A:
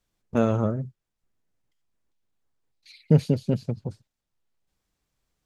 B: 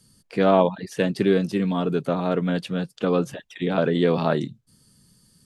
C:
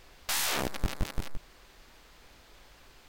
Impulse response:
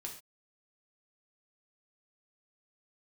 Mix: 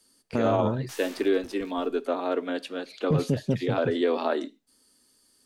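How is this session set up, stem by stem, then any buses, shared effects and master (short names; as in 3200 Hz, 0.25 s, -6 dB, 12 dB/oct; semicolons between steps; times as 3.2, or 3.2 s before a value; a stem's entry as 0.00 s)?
+1.0 dB, 0.00 s, no send, dry
-3.5 dB, 0.00 s, send -10.5 dB, elliptic high-pass 260 Hz, stop band 50 dB
-13.0 dB, 0.60 s, send -12 dB, auto duck -7 dB, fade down 1.75 s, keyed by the second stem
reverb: on, pre-delay 3 ms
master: low shelf 63 Hz -9.5 dB; limiter -14 dBFS, peak gain reduction 8 dB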